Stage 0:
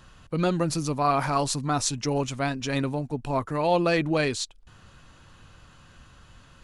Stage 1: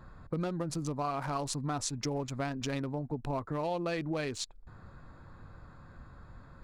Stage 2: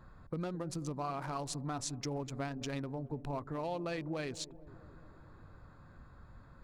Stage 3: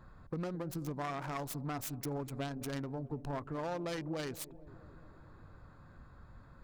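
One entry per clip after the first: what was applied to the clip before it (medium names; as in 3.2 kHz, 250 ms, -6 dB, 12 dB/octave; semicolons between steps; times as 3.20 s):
local Wiener filter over 15 samples; compression 6:1, threshold -33 dBFS, peak gain reduction 14 dB; trim +1.5 dB
feedback echo behind a low-pass 214 ms, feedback 67%, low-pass 560 Hz, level -14.5 dB; trim -4.5 dB
self-modulated delay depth 0.39 ms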